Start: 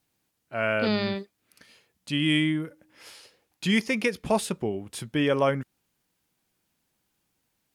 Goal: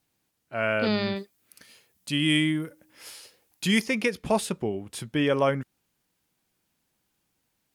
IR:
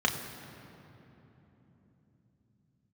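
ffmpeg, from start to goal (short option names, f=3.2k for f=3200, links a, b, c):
-filter_complex "[0:a]asettb=1/sr,asplit=3[a][b][c];[a]atrim=end=1.164[d];[b]atrim=start=1.16:end=3.86,asetpts=PTS-STARTPTS,afade=t=in:d=0.004:c=qsin,afade=t=out:st=2.696:d=0.004:c=qsin,highshelf=f=7.4k:g=11.5[e];[c]atrim=start=3.856[f];[d][e]acrossfade=d=0.004:c1=hsin:c2=qsin[g];[g][f]acrossfade=d=0.004:c1=qsin:c2=hsin"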